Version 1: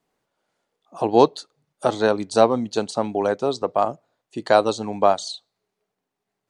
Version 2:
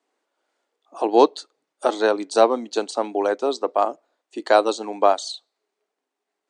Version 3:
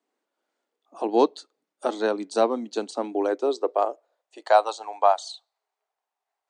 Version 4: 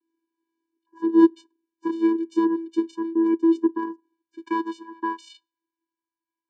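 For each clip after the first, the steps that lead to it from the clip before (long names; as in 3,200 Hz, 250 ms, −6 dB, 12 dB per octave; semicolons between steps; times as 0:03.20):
elliptic band-pass filter 290–8,900 Hz, stop band 40 dB; level +1 dB
high-pass filter sweep 190 Hz → 780 Hz, 0:02.71–0:04.64; level −6.5 dB
channel vocoder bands 8, square 330 Hz; level +2.5 dB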